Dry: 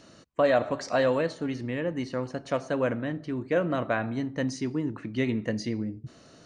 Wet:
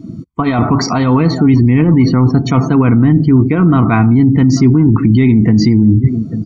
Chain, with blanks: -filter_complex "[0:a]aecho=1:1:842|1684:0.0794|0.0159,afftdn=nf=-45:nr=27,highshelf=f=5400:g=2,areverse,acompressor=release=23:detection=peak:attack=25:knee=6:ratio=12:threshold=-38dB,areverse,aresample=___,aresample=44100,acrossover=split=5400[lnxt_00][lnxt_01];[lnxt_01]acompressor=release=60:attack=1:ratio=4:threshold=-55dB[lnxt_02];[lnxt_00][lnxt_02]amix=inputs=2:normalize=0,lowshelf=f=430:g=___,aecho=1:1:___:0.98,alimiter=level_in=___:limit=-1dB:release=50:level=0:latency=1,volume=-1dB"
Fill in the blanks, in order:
32000, 11, 0.9, 21dB